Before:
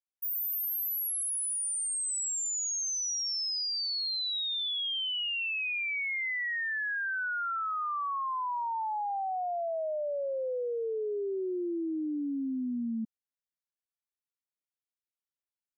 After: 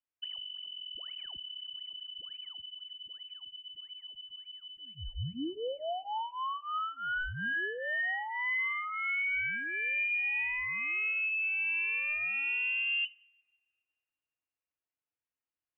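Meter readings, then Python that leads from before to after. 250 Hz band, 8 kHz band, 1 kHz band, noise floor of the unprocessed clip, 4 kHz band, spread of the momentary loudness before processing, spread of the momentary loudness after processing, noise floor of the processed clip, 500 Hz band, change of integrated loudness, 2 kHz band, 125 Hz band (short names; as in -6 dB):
-12.0 dB, under -40 dB, -5.5 dB, under -85 dBFS, -6.0 dB, 4 LU, 15 LU, under -85 dBFS, -10.0 dB, -1.5 dB, +3.5 dB, n/a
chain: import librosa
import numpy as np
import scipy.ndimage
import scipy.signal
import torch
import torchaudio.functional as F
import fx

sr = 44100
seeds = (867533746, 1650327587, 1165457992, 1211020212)

y = fx.lower_of_two(x, sr, delay_ms=5.2)
y = fx.rider(y, sr, range_db=10, speed_s=0.5)
y = fx.rev_double_slope(y, sr, seeds[0], early_s=0.64, late_s=2.1, knee_db=-18, drr_db=20.0)
y = fx.freq_invert(y, sr, carrier_hz=3000)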